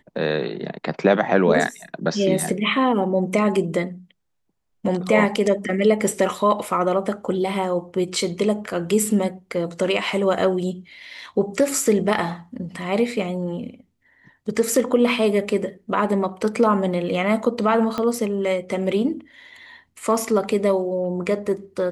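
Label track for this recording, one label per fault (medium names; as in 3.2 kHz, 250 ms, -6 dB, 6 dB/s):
17.980000	17.980000	pop -12 dBFS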